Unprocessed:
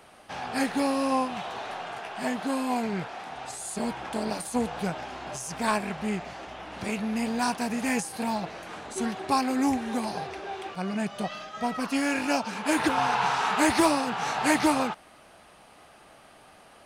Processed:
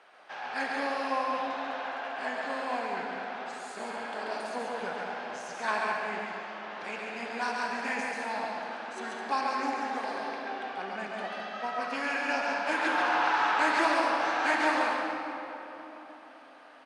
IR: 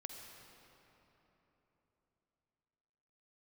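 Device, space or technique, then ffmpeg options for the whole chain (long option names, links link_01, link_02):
station announcement: -filter_complex "[0:a]highpass=450,lowpass=4500,equalizer=frequency=1600:width_type=o:width=0.44:gain=6,aecho=1:1:137|209.9:0.631|0.355[link_01];[1:a]atrim=start_sample=2205[link_02];[link_01][link_02]afir=irnorm=-1:irlink=0"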